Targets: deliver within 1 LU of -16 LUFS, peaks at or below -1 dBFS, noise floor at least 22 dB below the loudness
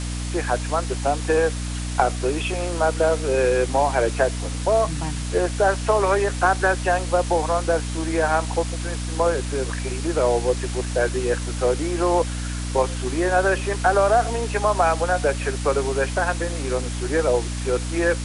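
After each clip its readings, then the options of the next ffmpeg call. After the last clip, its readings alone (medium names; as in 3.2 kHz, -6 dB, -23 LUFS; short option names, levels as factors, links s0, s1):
hum 60 Hz; highest harmonic 300 Hz; hum level -25 dBFS; noise floor -28 dBFS; noise floor target -44 dBFS; loudness -22.0 LUFS; peak level -5.0 dBFS; loudness target -16.0 LUFS
-> -af "bandreject=f=60:t=h:w=6,bandreject=f=120:t=h:w=6,bandreject=f=180:t=h:w=6,bandreject=f=240:t=h:w=6,bandreject=f=300:t=h:w=6"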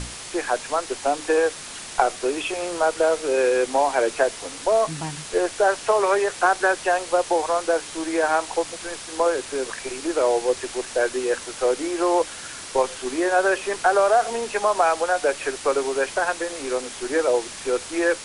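hum not found; noise floor -37 dBFS; noise floor target -45 dBFS
-> -af "afftdn=nr=8:nf=-37"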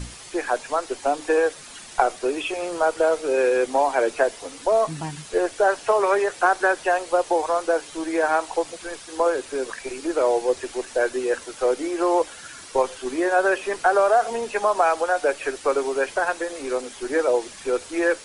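noise floor -42 dBFS; noise floor target -45 dBFS
-> -af "afftdn=nr=6:nf=-42"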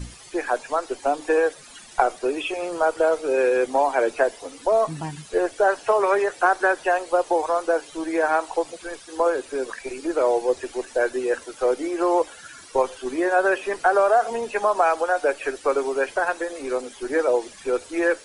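noise floor -45 dBFS; loudness -23.0 LUFS; peak level -5.0 dBFS; loudness target -16.0 LUFS
-> -af "volume=2.24,alimiter=limit=0.891:level=0:latency=1"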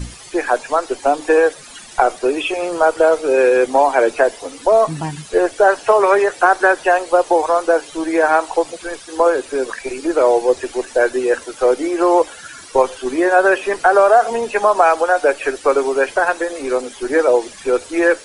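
loudness -16.0 LUFS; peak level -1.0 dBFS; noise floor -38 dBFS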